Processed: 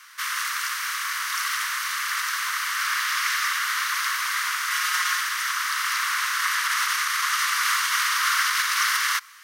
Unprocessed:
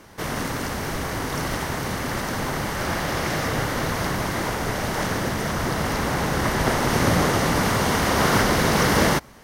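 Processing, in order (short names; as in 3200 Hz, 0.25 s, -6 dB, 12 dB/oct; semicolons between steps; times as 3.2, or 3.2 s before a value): 4.7–5.21 comb 5.6 ms, depth 90%; limiter -13.5 dBFS, peak gain reduction 6.5 dB; steep high-pass 1100 Hz 72 dB/oct; gain +5 dB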